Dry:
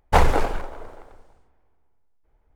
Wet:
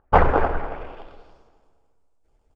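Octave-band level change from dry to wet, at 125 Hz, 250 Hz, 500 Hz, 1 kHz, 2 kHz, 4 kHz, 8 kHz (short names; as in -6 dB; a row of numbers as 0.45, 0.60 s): -0.5 dB, +2.0 dB, +3.0 dB, +2.5 dB, +1.0 dB, -9.0 dB, under -20 dB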